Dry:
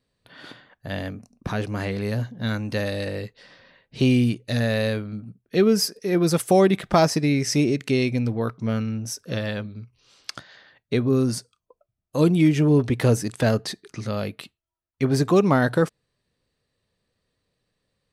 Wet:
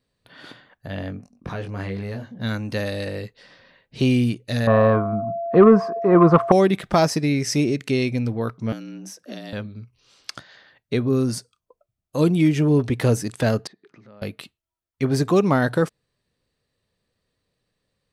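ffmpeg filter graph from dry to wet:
-filter_complex "[0:a]asettb=1/sr,asplit=3[a][b][c];[a]atrim=end=0.874[d];[b]atrim=start=0.87:end=2.41,asetpts=PTS-STARTPTS,afade=t=in:d=0.004:c=qsin,afade=t=out:st=1.536:d=0.004:c=qsin,aemphasis=mode=reproduction:type=cd,acompressor=threshold=-34dB:ratio=1.5:attack=3.2:release=140:knee=1:detection=peak,asplit=2[e][f];[f]adelay=21,volume=-5dB[g];[e][g]amix=inputs=2:normalize=0,atrim=end_sample=67914[h];[c]atrim=start=2.406[i];[d][h]acrossfade=d=0.004:c1=hsin:c2=qsin[j];[j][i]acrossfade=d=0.004:c1=qsin:c2=hsin,asettb=1/sr,asplit=3[k][l][m];[k]atrim=end=4.674[n];[l]atrim=start=4.67:end=6.52,asetpts=PTS-STARTPTS,afade=t=in:d=0.004:c=qsin,afade=t=out:st=1.846:d=0.004:c=qsin,lowpass=f=1.1k:t=q:w=11,aeval=exprs='val(0)+0.0282*sin(2*PI*680*n/s)':c=same,acontrast=61[o];[m]atrim=start=6.516[p];[n][o]acrossfade=d=0.004:c1=hsin:c2=qsin[q];[q][p]acrossfade=d=0.004:c1=qsin:c2=hsin,asettb=1/sr,asplit=3[r][s][t];[r]atrim=end=8.724[u];[s]atrim=start=8.72:end=9.53,asetpts=PTS-STARTPTS,afade=t=in:d=0.004:c=qsin,afade=t=out:st=0.806:d=0.004:c=qsin,afreqshift=74,acrossover=split=820|3700[v][w][x];[v]acompressor=threshold=-35dB:ratio=4[y];[w]acompressor=threshold=-47dB:ratio=4[z];[x]acompressor=threshold=-42dB:ratio=4[aa];[y][z][aa]amix=inputs=3:normalize=0[ab];[t]atrim=start=9.526[ac];[u][ab]acrossfade=d=0.004:c1=hsin:c2=qsin[ad];[ad][ac]acrossfade=d=0.004:c1=qsin:c2=hsin,asettb=1/sr,asplit=3[ae][af][ag];[ae]atrim=end=13.674[ah];[af]atrim=start=13.67:end=14.22,asetpts=PTS-STARTPTS,afade=t=in:d=0.004:c=qsin,afade=t=out:st=0.546:d=0.004:c=qsin,acompressor=threshold=-48dB:ratio=3:attack=3.2:release=140:knee=1:detection=peak,highpass=160,lowpass=2.2k[ai];[ag]atrim=start=14.216[aj];[ah][ai]acrossfade=d=0.004:c1=hsin:c2=qsin[ak];[ak][aj]acrossfade=d=0.004:c1=qsin:c2=hsin"

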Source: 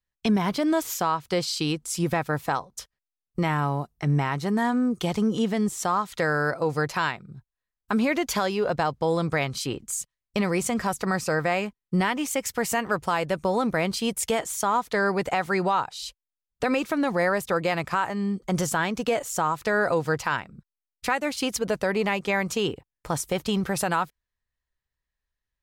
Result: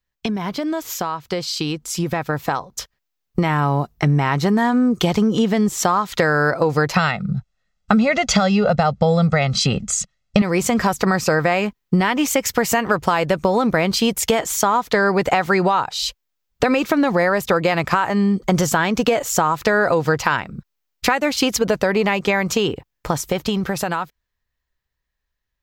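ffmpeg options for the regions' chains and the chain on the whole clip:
-filter_complex "[0:a]asettb=1/sr,asplit=3[a][b][c];[a]atrim=end=6.954[d];[b]atrim=start=6.95:end=10.42,asetpts=PTS-STARTPTS,afade=t=in:d=0.004:c=qsin,afade=t=out:st=3.466:d=0.004:c=qsin,lowpass=f=8.1k:w=0.5412,lowpass=f=8.1k:w=1.3066,equalizer=f=190:t=o:w=0.59:g=10,aecho=1:1:1.5:0.76,atrim=end_sample=153027[e];[c]atrim=start=10.416[f];[d][e]acrossfade=d=0.004:c1=hsin:c2=qsin[g];[g][f]acrossfade=d=0.004:c1=qsin:c2=hsin,acompressor=threshold=-27dB:ratio=6,equalizer=f=9.4k:w=2.5:g=-10,dynaudnorm=f=260:g=21:m=7dB,volume=6.5dB"

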